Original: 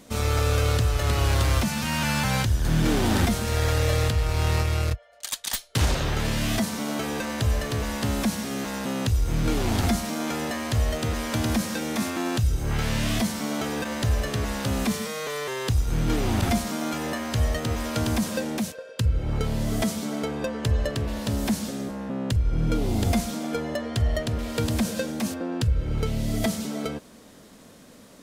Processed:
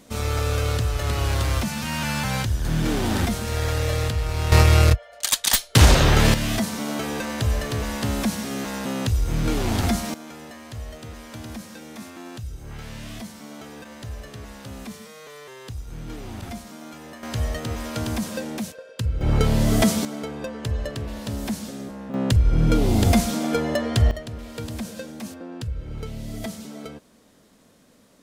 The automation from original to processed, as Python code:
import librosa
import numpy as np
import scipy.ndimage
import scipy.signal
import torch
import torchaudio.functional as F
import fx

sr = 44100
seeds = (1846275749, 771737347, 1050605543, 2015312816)

y = fx.gain(x, sr, db=fx.steps((0.0, -1.0), (4.52, 9.5), (6.34, 1.0), (10.14, -11.5), (17.23, -2.0), (19.21, 7.0), (20.05, -3.0), (22.14, 5.5), (24.11, -7.0)))